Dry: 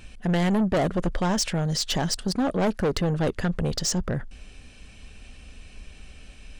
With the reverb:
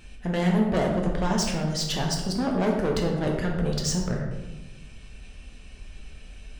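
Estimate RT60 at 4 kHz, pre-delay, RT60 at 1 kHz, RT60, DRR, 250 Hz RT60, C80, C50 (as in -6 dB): 0.65 s, 8 ms, 1.0 s, 1.1 s, -0.5 dB, 1.5 s, 6.0 dB, 3.5 dB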